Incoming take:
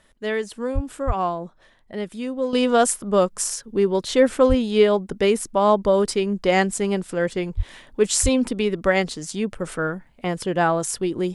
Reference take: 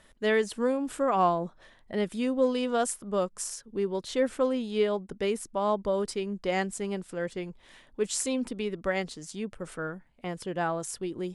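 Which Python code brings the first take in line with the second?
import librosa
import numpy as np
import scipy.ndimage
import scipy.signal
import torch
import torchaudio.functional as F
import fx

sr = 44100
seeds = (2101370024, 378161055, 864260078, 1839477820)

y = fx.fix_deplosive(x, sr, at_s=(0.74, 1.06, 4.48, 7.56, 8.22))
y = fx.fix_level(y, sr, at_s=2.53, step_db=-10.0)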